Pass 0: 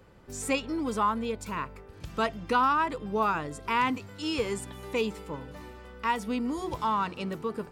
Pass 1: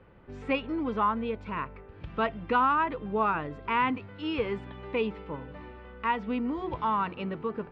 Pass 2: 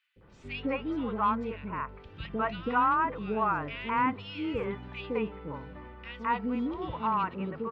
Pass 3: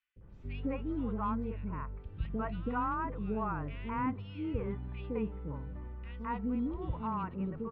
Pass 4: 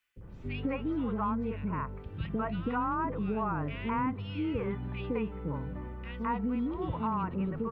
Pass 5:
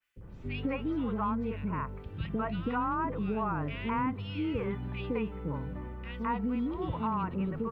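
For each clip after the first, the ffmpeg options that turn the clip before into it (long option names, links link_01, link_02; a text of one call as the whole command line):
ffmpeg -i in.wav -af "lowpass=frequency=3000:width=0.5412,lowpass=frequency=3000:width=1.3066" out.wav
ffmpeg -i in.wav -filter_complex "[0:a]acrossover=split=510|2400[link_01][link_02][link_03];[link_01]adelay=160[link_04];[link_02]adelay=210[link_05];[link_04][link_05][link_03]amix=inputs=3:normalize=0" out.wav
ffmpeg -i in.wav -af "aemphasis=mode=reproduction:type=riaa,volume=-9dB" out.wav
ffmpeg -i in.wav -filter_complex "[0:a]acrossover=split=93|1000[link_01][link_02][link_03];[link_01]acompressor=threshold=-56dB:ratio=4[link_04];[link_02]acompressor=threshold=-39dB:ratio=4[link_05];[link_03]acompressor=threshold=-46dB:ratio=4[link_06];[link_04][link_05][link_06]amix=inputs=3:normalize=0,volume=8.5dB" out.wav
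ffmpeg -i in.wav -af "adynamicequalizer=threshold=0.00398:dfrequency=2600:dqfactor=0.7:tfrequency=2600:tqfactor=0.7:attack=5:release=100:ratio=0.375:range=2:mode=boostabove:tftype=highshelf" out.wav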